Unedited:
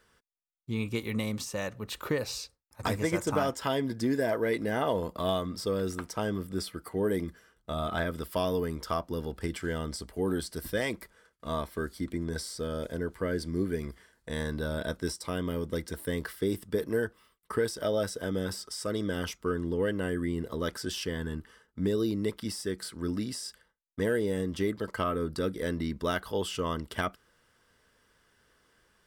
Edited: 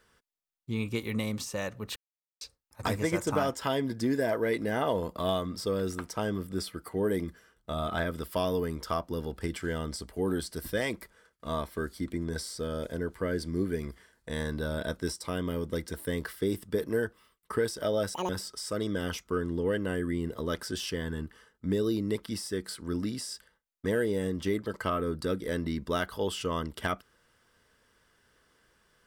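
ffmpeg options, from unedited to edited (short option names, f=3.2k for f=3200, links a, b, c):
-filter_complex "[0:a]asplit=5[a][b][c][d][e];[a]atrim=end=1.96,asetpts=PTS-STARTPTS,afade=t=out:st=1.956:d=0.004:c=hsin[f];[b]atrim=start=1.96:end=2.41,asetpts=PTS-STARTPTS,volume=0[g];[c]atrim=start=2.41:end=18.144,asetpts=PTS-STARTPTS,afade=t=in:d=0.004:c=hsin[h];[d]atrim=start=18.14:end=18.43,asetpts=PTS-STARTPTS,asetrate=84672,aresample=44100[i];[e]atrim=start=18.426[j];[f][g][h]concat=n=3:v=0:a=1[k];[k][i]acrossfade=d=0.004:c1=hsin:c2=hsin[l];[l][j]acrossfade=d=0.004:c1=hsin:c2=hsin"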